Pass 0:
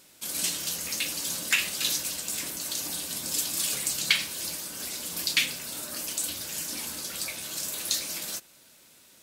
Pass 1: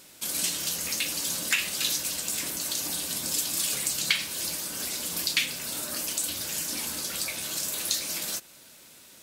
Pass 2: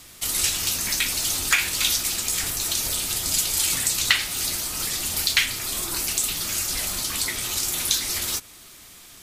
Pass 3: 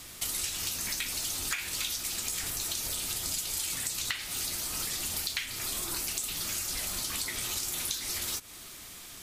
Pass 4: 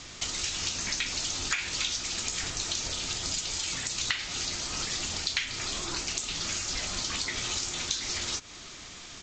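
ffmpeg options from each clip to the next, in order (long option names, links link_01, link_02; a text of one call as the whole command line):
ffmpeg -i in.wav -af "acompressor=threshold=-36dB:ratio=1.5,volume=4.5dB" out.wav
ffmpeg -i in.wav -af "afreqshift=-260,volume=5.5dB" out.wav
ffmpeg -i in.wav -af "acompressor=threshold=-31dB:ratio=6" out.wav
ffmpeg -i in.wav -af "aresample=16000,aresample=44100,volume=4dB" out.wav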